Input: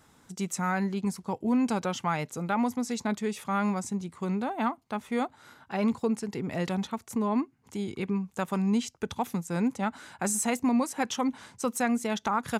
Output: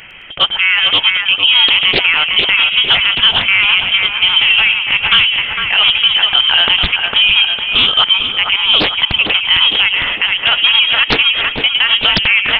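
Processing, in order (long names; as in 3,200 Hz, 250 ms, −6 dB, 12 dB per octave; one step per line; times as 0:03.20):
inverse Chebyshev high-pass filter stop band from 160 Hz, stop band 40 dB
downward compressor, threshold −31 dBFS, peak gain reduction 9 dB
voice inversion scrambler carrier 3,500 Hz
on a send: echo with a time of its own for lows and highs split 2,600 Hz, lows 454 ms, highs 108 ms, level −7 dB
on the sum: boost into a limiter +27.5 dB
highs frequency-modulated by the lows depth 0.73 ms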